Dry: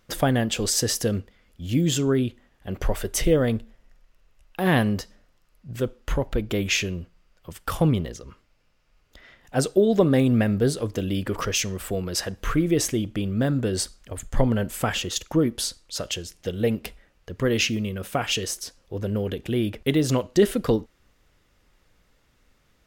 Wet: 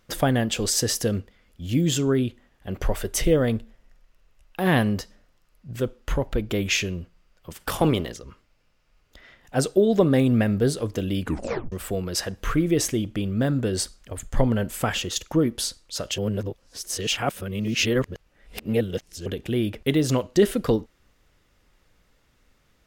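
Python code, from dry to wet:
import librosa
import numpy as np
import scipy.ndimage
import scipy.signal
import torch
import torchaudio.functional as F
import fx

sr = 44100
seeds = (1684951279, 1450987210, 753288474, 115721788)

y = fx.spec_clip(x, sr, under_db=13, at=(7.5, 8.16), fade=0.02)
y = fx.edit(y, sr, fx.tape_stop(start_s=11.21, length_s=0.51),
    fx.reverse_span(start_s=16.18, length_s=3.08), tone=tone)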